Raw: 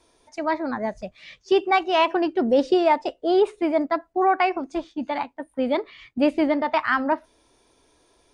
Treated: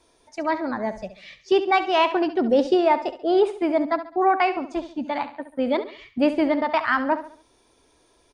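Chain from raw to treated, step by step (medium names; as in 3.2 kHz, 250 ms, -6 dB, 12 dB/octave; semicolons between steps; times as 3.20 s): 2.75–3.37 s: treble shelf 4.3 kHz -5.5 dB; feedback delay 69 ms, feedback 39%, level -12.5 dB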